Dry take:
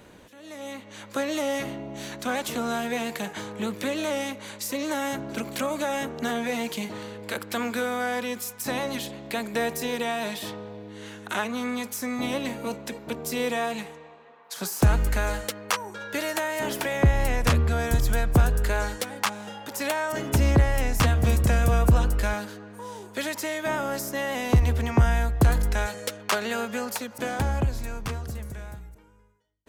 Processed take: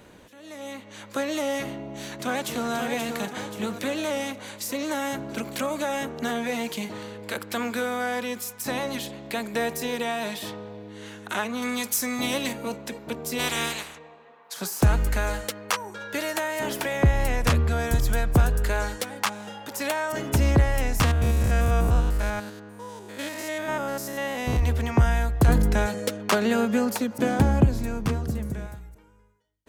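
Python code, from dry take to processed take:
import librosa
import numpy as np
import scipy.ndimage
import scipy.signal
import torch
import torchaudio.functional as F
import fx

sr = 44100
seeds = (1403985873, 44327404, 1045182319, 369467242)

y = fx.echo_throw(x, sr, start_s=1.66, length_s=1.06, ms=530, feedback_pct=55, wet_db=-6.5)
y = fx.high_shelf(y, sr, hz=2600.0, db=9.5, at=(11.62, 12.53))
y = fx.spec_clip(y, sr, under_db=24, at=(13.38, 13.97), fade=0.02)
y = fx.spec_steps(y, sr, hold_ms=100, at=(21.04, 24.59), fade=0.02)
y = fx.peak_eq(y, sr, hz=220.0, db=11.0, octaves=2.4, at=(25.48, 28.67))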